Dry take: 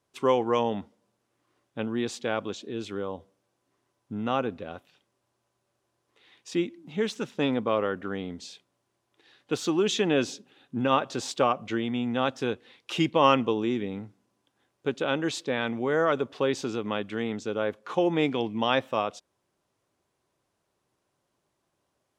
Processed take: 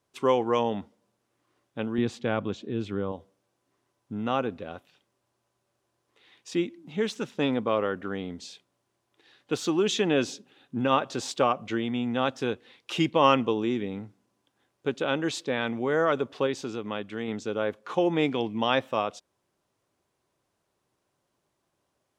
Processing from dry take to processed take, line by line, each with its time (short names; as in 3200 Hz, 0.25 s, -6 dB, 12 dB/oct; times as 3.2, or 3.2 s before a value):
1.98–3.12 tone controls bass +9 dB, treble -9 dB
16.47–17.28 gain -3 dB